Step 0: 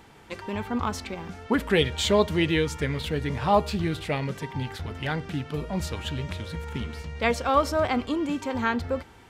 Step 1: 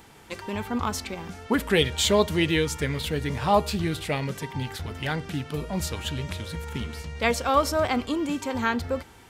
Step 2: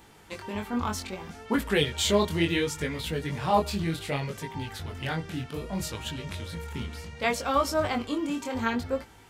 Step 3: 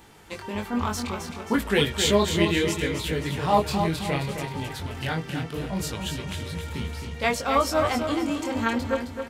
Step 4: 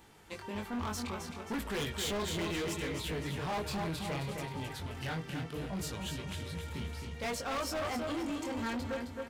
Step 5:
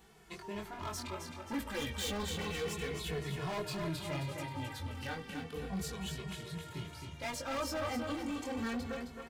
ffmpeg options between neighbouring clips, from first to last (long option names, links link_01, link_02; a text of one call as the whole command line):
ffmpeg -i in.wav -af "highshelf=frequency=5900:gain=10" out.wav
ffmpeg -i in.wav -af "flanger=delay=18:depth=6.8:speed=0.66" out.wav
ffmpeg -i in.wav -af "aecho=1:1:265|530|795|1060|1325:0.447|0.179|0.0715|0.0286|0.0114,volume=2.5dB" out.wav
ffmpeg -i in.wav -af "asoftclip=type=hard:threshold=-25dB,volume=-7.5dB" out.wav
ffmpeg -i in.wav -filter_complex "[0:a]asplit=2[link_01][link_02];[link_02]adelay=2.3,afreqshift=-0.33[link_03];[link_01][link_03]amix=inputs=2:normalize=1,volume=1dB" out.wav